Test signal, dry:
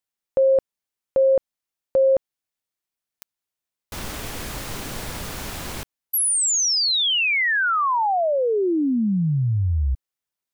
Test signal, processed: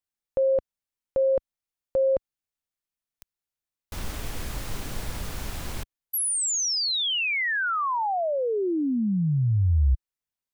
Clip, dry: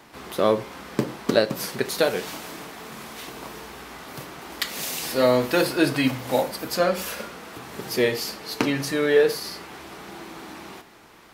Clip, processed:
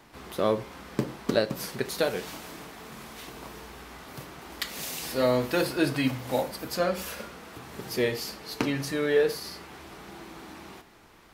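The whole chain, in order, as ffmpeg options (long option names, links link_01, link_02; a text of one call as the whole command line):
ffmpeg -i in.wav -af "lowshelf=frequency=89:gain=11,volume=-5.5dB" out.wav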